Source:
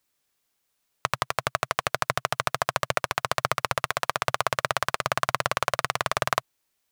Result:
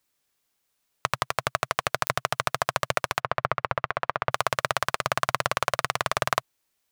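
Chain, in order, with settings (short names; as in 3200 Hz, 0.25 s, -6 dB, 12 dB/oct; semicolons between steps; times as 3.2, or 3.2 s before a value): 3.2–4.31 LPF 2100 Hz 12 dB/oct; pops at 2.07, -4 dBFS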